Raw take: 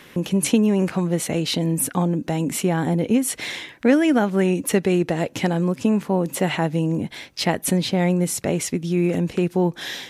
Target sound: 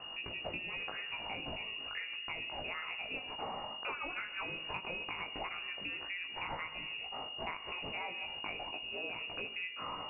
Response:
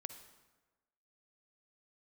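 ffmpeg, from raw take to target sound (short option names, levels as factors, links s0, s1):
-filter_complex "[0:a]aderivative,aeval=exprs='val(0)+0.00251*(sin(2*PI*50*n/s)+sin(2*PI*2*50*n/s)/2+sin(2*PI*3*50*n/s)/3+sin(2*PI*4*50*n/s)/4+sin(2*PI*5*50*n/s)/5)':c=same,flanger=delay=17:depth=2.5:speed=0.31,asplit=2[s0][s1];[1:a]atrim=start_sample=2205,highshelf=f=4500:g=11[s2];[s1][s2]afir=irnorm=-1:irlink=0,volume=2.37[s3];[s0][s3]amix=inputs=2:normalize=0,lowpass=f=2500:t=q:w=0.5098,lowpass=f=2500:t=q:w=0.6013,lowpass=f=2500:t=q:w=0.9,lowpass=f=2500:t=q:w=2.563,afreqshift=-2900,acompressor=threshold=0.0126:ratio=6,volume=1.12"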